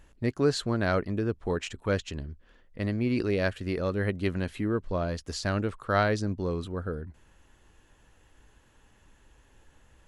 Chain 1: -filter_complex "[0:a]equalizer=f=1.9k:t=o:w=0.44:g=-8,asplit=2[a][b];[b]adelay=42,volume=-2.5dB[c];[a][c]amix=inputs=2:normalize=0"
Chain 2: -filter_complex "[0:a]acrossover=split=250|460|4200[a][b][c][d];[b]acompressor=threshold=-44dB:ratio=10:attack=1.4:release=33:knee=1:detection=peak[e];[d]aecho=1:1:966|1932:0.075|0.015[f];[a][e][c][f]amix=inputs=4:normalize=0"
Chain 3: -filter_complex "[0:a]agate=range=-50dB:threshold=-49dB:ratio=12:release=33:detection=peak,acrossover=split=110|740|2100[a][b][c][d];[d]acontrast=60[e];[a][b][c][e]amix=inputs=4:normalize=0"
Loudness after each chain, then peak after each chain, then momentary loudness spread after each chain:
-28.0, -31.5, -29.0 LUFS; -9.0, -12.0, -8.5 dBFS; 9, 8, 9 LU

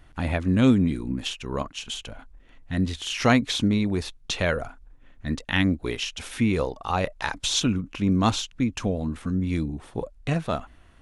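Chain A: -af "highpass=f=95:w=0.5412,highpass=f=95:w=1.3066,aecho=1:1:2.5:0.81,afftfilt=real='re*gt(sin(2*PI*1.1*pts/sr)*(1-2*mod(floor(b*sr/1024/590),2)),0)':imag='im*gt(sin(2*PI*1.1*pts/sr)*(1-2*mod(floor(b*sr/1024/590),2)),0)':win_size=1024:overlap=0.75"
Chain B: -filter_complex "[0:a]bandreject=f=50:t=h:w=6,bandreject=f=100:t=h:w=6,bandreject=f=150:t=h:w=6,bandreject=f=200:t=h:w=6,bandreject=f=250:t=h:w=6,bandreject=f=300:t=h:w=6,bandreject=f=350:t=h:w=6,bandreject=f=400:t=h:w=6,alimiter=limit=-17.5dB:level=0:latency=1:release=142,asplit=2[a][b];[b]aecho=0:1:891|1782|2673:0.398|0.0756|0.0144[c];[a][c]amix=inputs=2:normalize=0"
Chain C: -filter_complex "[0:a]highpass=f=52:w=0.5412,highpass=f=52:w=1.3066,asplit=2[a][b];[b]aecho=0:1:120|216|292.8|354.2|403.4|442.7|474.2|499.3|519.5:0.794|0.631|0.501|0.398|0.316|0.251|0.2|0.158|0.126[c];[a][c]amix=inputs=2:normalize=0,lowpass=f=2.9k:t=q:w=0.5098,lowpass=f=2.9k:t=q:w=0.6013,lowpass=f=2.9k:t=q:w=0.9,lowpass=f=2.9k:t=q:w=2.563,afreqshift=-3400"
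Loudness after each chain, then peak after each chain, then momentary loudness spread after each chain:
-29.0, -29.0, -18.5 LUFS; -9.5, -15.0, -3.5 dBFS; 13, 7, 11 LU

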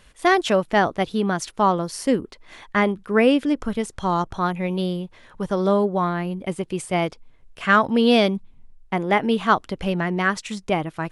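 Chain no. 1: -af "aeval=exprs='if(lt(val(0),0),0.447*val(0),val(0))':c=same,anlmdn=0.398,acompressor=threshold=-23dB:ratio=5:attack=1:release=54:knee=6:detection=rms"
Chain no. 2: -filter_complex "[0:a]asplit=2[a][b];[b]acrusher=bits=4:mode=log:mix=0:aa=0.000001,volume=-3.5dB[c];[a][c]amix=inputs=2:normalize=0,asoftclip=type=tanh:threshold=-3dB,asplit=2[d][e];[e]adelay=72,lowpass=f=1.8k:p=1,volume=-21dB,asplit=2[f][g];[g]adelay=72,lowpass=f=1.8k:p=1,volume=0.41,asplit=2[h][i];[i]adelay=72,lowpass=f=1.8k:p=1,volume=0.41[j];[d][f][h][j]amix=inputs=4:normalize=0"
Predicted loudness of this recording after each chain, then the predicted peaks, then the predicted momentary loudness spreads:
-31.0, -18.0 LUFS; -16.5, -3.5 dBFS; 6, 10 LU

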